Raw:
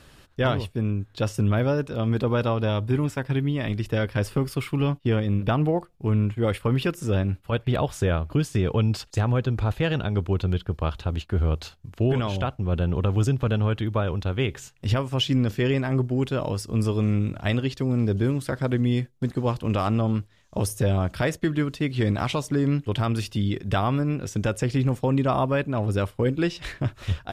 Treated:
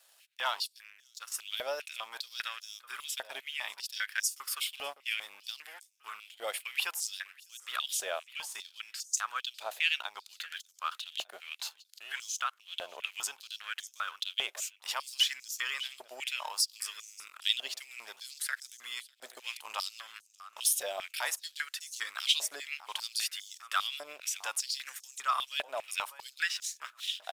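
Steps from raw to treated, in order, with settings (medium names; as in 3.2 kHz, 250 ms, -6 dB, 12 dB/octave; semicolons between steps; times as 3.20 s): differentiator; 0.74–1.32 s: compression 4:1, threshold -52 dBFS, peak gain reduction 11.5 dB; waveshaping leveller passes 2; 8.30–9.14 s: level held to a coarse grid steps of 10 dB; on a send: feedback delay 599 ms, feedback 35%, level -19.5 dB; on the sum: step-sequenced high-pass 5 Hz 650–6200 Hz; trim -2 dB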